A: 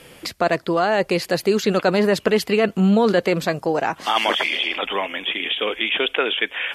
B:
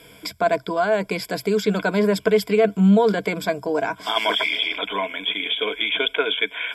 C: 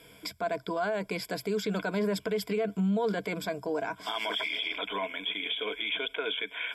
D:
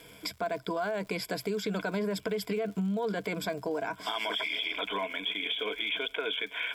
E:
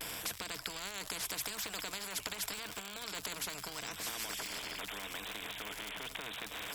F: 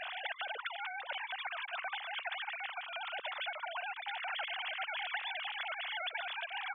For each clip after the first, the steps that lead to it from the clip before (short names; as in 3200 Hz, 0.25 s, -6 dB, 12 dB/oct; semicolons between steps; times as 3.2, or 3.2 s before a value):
ripple EQ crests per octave 1.7, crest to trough 14 dB; gain -4.5 dB
limiter -15 dBFS, peak gain reduction 8.5 dB; gain -7 dB
compressor, threshold -30 dBFS, peak gain reduction 5.5 dB; crackle 160/s -46 dBFS; gain +2 dB
vibrato 0.81 Hz 64 cents; spectral compressor 10:1; gain +2.5 dB
sine-wave speech; gain +1.5 dB